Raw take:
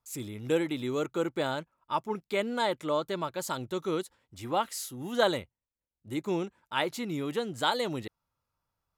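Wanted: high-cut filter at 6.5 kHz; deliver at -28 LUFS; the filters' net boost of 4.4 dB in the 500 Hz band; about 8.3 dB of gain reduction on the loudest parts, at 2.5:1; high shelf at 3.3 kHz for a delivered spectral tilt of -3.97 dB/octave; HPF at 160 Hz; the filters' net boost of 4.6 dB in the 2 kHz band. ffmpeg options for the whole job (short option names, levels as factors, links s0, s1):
-af "highpass=160,lowpass=6500,equalizer=f=500:t=o:g=5,equalizer=f=2000:t=o:g=4.5,highshelf=f=3300:g=4.5,acompressor=threshold=0.0355:ratio=2.5,volume=1.88"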